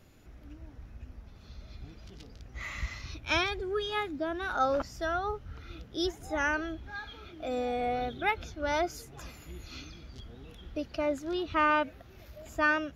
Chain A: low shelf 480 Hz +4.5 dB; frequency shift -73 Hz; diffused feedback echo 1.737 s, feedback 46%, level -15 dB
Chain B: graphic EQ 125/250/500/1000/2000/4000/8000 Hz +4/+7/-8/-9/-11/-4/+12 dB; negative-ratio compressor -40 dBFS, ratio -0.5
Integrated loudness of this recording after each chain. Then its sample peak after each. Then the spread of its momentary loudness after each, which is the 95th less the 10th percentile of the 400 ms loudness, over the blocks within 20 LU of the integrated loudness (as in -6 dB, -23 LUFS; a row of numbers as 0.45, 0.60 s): -31.0, -42.5 LUFS; -13.0, -24.5 dBFS; 21, 7 LU